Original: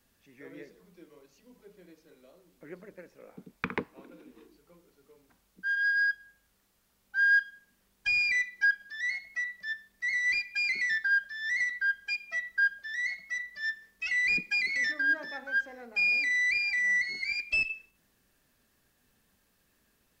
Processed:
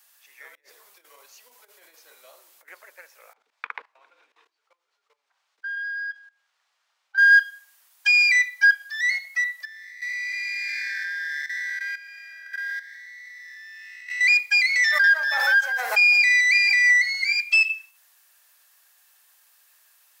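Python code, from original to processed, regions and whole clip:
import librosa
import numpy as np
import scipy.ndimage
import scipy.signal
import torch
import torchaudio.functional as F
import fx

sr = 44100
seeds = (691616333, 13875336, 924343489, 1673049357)

y = fx.chain(x, sr, fx.over_compress(threshold_db=-55.0, ratio=-0.5),
    fx.low_shelf(hz=430.0, db=11.5), at=(0.55, 2.68))
y = fx.chain(y, sr, fx.level_steps(step_db=19),
    fx.air_absorb(metres=150.0), at=(3.33, 7.18))
y = fx.chain(y, sr, fx.spec_blur(span_ms=487.0),
    fx.level_steps(step_db=13), at=(9.65, 14.21))
y = fx.chain(y, sr, fx.echo_single(ms=168, db=-9.0),
    fx.pre_swell(db_per_s=31.0), at=(14.87, 16.93))
y = scipy.signal.sosfilt(scipy.signal.butter(4, 770.0, 'highpass', fs=sr, output='sos'), y)
y = fx.high_shelf(y, sr, hz=6200.0, db=8.5)
y = y * 10.0 ** (8.5 / 20.0)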